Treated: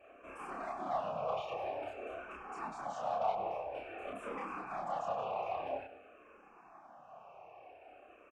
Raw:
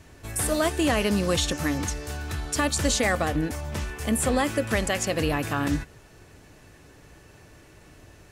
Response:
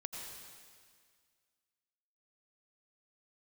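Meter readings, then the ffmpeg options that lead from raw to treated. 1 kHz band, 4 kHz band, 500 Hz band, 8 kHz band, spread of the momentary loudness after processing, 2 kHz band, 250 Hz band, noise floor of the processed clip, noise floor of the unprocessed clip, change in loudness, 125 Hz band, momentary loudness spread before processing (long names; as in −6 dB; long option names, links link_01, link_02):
−5.0 dB, −25.5 dB, −11.0 dB, below −35 dB, 21 LU, −19.5 dB, −25.0 dB, −60 dBFS, −52 dBFS, −14.0 dB, −28.0 dB, 9 LU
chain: -filter_complex "[0:a]highpass=42,equalizer=frequency=4100:width=3:gain=-13.5,bandreject=frequency=3400:width=12,acrossover=split=240|3700[link_01][link_02][link_03];[link_02]alimiter=limit=-21.5dB:level=0:latency=1:release=30[link_04];[link_01][link_04][link_03]amix=inputs=3:normalize=0,asoftclip=type=tanh:threshold=-31dB,asplit=3[link_05][link_06][link_07];[link_05]bandpass=frequency=730:width_type=q:width=8,volume=0dB[link_08];[link_06]bandpass=frequency=1090:width_type=q:width=8,volume=-6dB[link_09];[link_07]bandpass=frequency=2440:width_type=q:width=8,volume=-9dB[link_10];[link_08][link_09][link_10]amix=inputs=3:normalize=0,aeval=exprs='0.0106*(abs(mod(val(0)/0.0106+3,4)-2)-1)':channel_layout=same,asplit=2[link_11][link_12];[link_12]highpass=frequency=720:poles=1,volume=6dB,asoftclip=type=tanh:threshold=-39dB[link_13];[link_11][link_13]amix=inputs=2:normalize=0,lowpass=frequency=1400:poles=1,volume=-6dB,afftfilt=real='hypot(re,im)*cos(2*PI*random(0))':imag='hypot(re,im)*sin(2*PI*random(1))':win_size=512:overlap=0.75,asplit=2[link_14][link_15];[link_15]adelay=30,volume=-2dB[link_16];[link_14][link_16]amix=inputs=2:normalize=0,asplit=2[link_17][link_18];[link_18]aecho=0:1:98|196|294|392|490:0.168|0.0923|0.0508|0.0279|0.0154[link_19];[link_17][link_19]amix=inputs=2:normalize=0,asplit=2[link_20][link_21];[link_21]afreqshift=-0.5[link_22];[link_20][link_22]amix=inputs=2:normalize=1,volume=17.5dB"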